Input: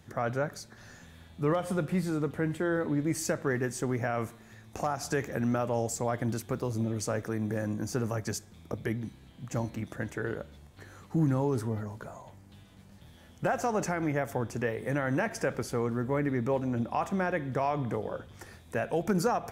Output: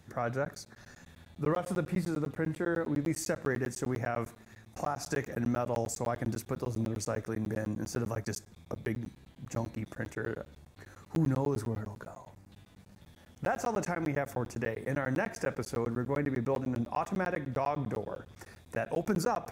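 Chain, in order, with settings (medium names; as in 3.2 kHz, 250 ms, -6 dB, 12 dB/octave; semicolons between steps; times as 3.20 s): band-stop 3.1 kHz, Q 14; crackling interface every 0.10 s, samples 512, zero, from 0.45 s; trim -2 dB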